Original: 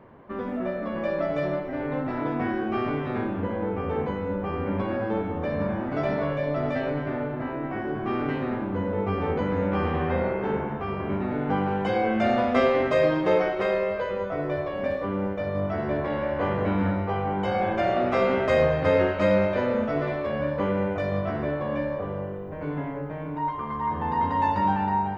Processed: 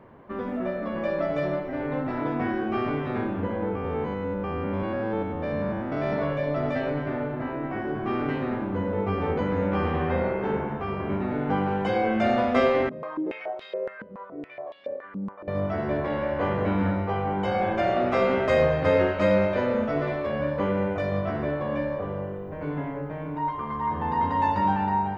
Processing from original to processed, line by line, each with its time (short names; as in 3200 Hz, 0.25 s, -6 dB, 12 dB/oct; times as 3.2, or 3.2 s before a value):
3.75–6.12 stepped spectrum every 0.1 s
12.89–15.48 stepped band-pass 7.1 Hz 210–3700 Hz